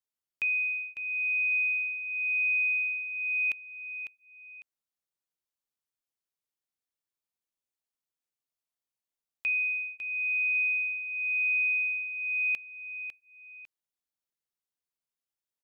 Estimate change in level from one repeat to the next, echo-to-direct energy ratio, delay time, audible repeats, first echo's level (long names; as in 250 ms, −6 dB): −9.5 dB, −9.0 dB, 551 ms, 2, −9.5 dB